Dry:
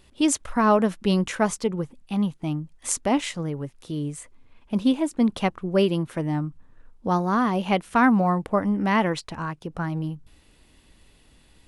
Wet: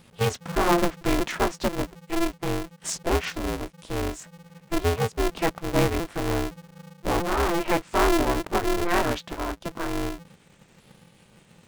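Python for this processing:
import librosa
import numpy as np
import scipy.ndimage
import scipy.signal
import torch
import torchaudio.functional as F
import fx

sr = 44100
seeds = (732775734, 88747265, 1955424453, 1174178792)

p1 = fx.pitch_ramps(x, sr, semitones=-5.0, every_ms=1200)
p2 = np.clip(p1, -10.0 ** (-25.0 / 20.0), 10.0 ** (-25.0 / 20.0))
p3 = p1 + (p2 * librosa.db_to_amplitude(-3.5))
p4 = fx.env_lowpass_down(p3, sr, base_hz=2600.0, full_db=-15.0)
p5 = p4 * np.sign(np.sin(2.0 * np.pi * 170.0 * np.arange(len(p4)) / sr))
y = p5 * librosa.db_to_amplitude(-3.0)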